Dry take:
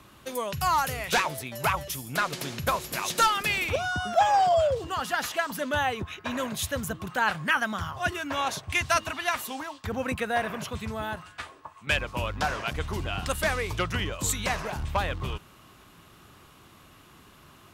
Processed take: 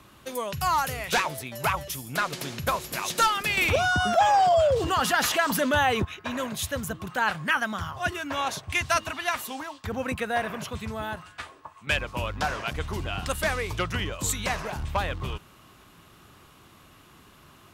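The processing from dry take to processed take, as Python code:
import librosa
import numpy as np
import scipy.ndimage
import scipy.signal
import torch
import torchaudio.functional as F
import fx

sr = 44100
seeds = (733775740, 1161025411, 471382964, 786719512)

y = fx.env_flatten(x, sr, amount_pct=50, at=(3.57, 6.05))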